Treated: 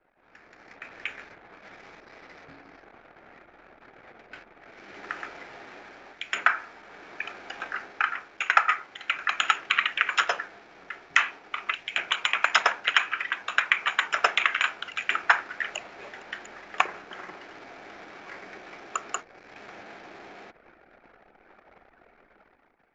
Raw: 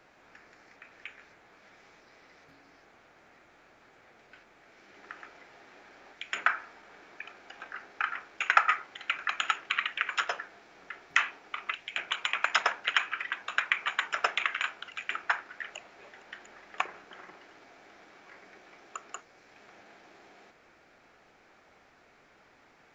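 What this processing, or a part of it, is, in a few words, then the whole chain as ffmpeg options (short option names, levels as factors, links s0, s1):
voice memo with heavy noise removal: -af "anlmdn=0.000158,dynaudnorm=f=110:g=11:m=3.76,volume=0.891"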